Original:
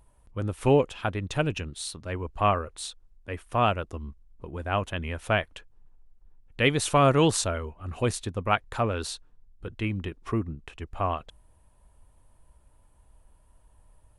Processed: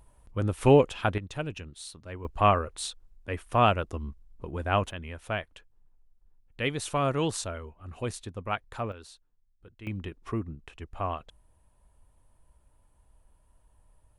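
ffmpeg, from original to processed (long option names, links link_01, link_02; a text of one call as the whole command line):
ffmpeg -i in.wav -af "asetnsamples=nb_out_samples=441:pad=0,asendcmd='1.18 volume volume -7.5dB;2.25 volume volume 1.5dB;4.91 volume volume -7dB;8.92 volume volume -15.5dB;9.87 volume volume -4dB',volume=2dB" out.wav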